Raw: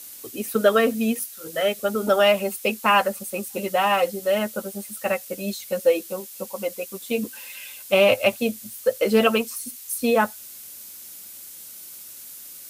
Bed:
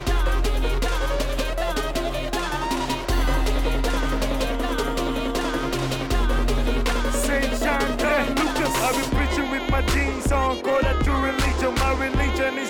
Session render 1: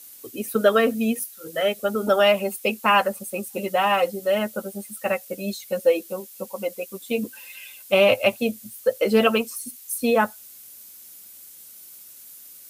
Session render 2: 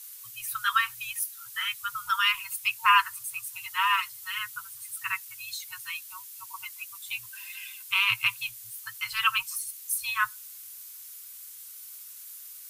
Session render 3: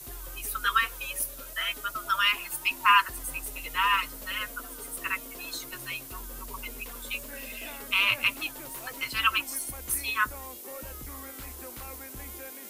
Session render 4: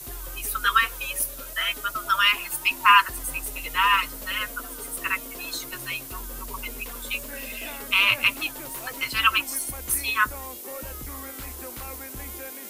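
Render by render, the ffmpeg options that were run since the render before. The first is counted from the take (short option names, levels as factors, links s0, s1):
-af "afftdn=nr=6:nf=-41"
-af "afftfilt=real='re*(1-between(b*sr/4096,130,910))':imag='im*(1-between(b*sr/4096,130,910))':win_size=4096:overlap=0.75,equalizer=f=78:w=0.5:g=-5.5"
-filter_complex "[1:a]volume=0.075[s0];[0:a][s0]amix=inputs=2:normalize=0"
-af "volume=1.68"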